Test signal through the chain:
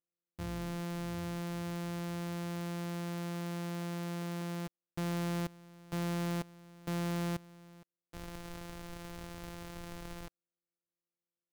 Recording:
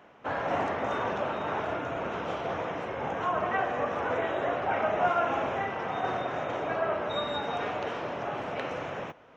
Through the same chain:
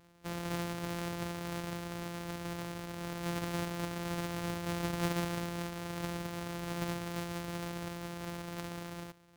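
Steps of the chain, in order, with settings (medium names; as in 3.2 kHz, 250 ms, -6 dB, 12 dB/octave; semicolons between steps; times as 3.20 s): sorted samples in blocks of 256 samples; trim -7.5 dB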